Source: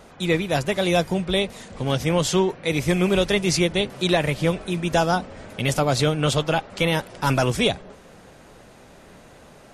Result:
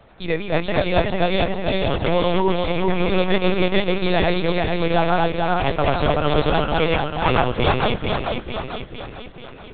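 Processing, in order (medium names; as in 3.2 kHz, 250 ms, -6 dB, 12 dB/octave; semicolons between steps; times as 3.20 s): backward echo that repeats 222 ms, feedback 76%, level -1 dB; dynamic bell 910 Hz, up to +5 dB, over -32 dBFS, Q 0.92; LPC vocoder at 8 kHz pitch kept; trim -2.5 dB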